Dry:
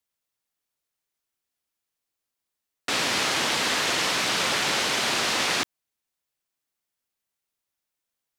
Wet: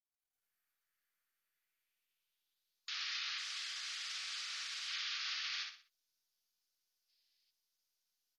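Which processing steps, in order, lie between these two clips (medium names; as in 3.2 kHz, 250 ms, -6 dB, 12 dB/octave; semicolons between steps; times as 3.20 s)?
low-pass that closes with the level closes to 2.5 kHz, closed at -26.5 dBFS; brick-wall FIR band-pass 1.1–6.9 kHz; peak limiter -26.5 dBFS, peak gain reduction 10.5 dB; level rider gain up to 13 dB; 3.38–4.88 s: hard clipper -23.5 dBFS, distortion -10 dB; band-pass sweep 1.7 kHz -> 5 kHz, 1.39–2.97 s; flange 0.93 Hz, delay 8.9 ms, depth 5.4 ms, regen -29%; on a send: feedback delay 61 ms, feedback 35%, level -4 dB; 7.09–7.51 s: on the sum: time-frequency box 1.6–5.4 kHz +11 dB; trim -6 dB; MP2 64 kbps 48 kHz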